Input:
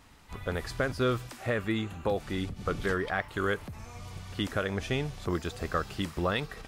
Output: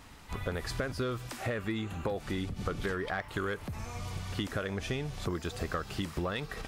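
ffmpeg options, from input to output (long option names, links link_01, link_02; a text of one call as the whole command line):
ffmpeg -i in.wav -filter_complex "[0:a]asplit=2[link_01][link_02];[link_02]aeval=exprs='0.168*sin(PI/2*1.41*val(0)/0.168)':channel_layout=same,volume=-3.5dB[link_03];[link_01][link_03]amix=inputs=2:normalize=0,acompressor=threshold=-27dB:ratio=6,volume=-3.5dB" out.wav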